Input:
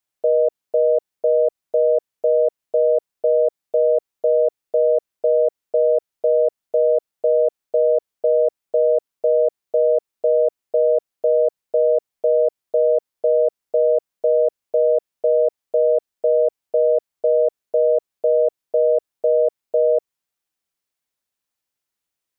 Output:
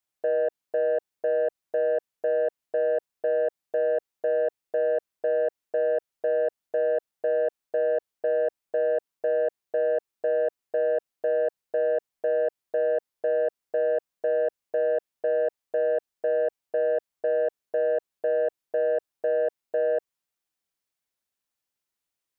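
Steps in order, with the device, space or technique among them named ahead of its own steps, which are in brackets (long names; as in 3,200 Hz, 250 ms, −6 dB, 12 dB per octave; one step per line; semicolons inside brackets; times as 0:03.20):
soft clipper into limiter (soft clipping −12 dBFS, distortion −19 dB; brickwall limiter −16 dBFS, peak gain reduction 2.5 dB)
level −3 dB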